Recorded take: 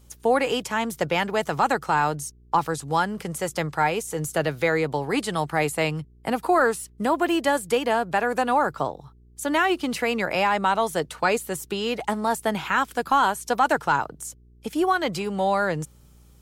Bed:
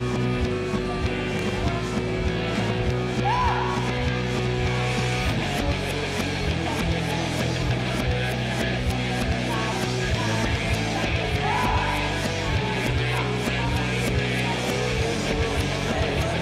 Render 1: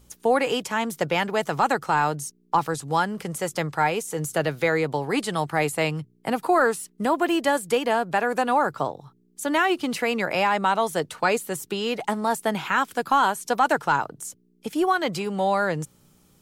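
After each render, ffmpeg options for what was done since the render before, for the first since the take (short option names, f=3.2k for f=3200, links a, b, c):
-af "bandreject=f=60:t=h:w=4,bandreject=f=120:t=h:w=4"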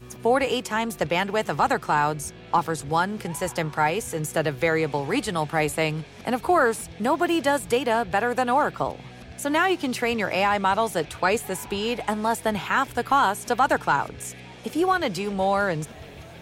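-filter_complex "[1:a]volume=-18.5dB[a];[0:a][a]amix=inputs=2:normalize=0"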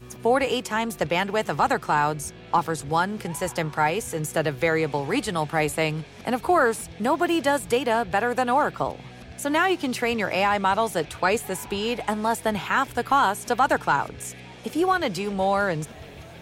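-af anull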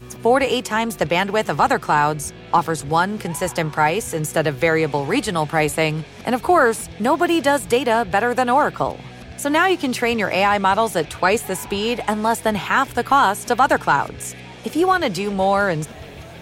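-af "volume=5dB"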